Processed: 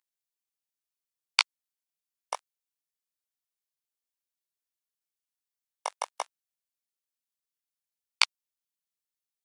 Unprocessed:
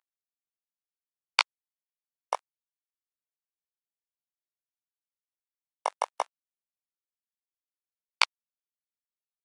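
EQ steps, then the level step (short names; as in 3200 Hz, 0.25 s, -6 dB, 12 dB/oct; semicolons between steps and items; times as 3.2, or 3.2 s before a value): high shelf 2200 Hz +10.5 dB; -6.0 dB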